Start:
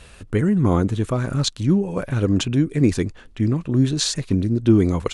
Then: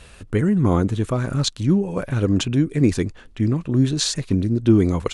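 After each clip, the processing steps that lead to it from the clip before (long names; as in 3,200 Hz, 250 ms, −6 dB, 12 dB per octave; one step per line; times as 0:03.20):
no processing that can be heard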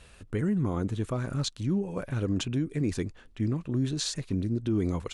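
brickwall limiter −11.5 dBFS, peak gain reduction 6.5 dB
level −8.5 dB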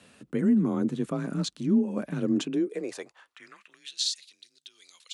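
frequency shifter +30 Hz
high-pass filter sweep 220 Hz → 3,800 Hz, 0:02.31–0:04.06
level −1.5 dB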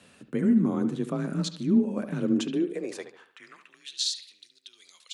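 bucket-brigade delay 72 ms, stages 2,048, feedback 41%, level −11 dB
on a send at −20.5 dB: convolution reverb RT60 0.40 s, pre-delay 5 ms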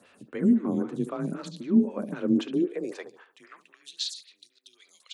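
phaser with staggered stages 3.8 Hz
level +2 dB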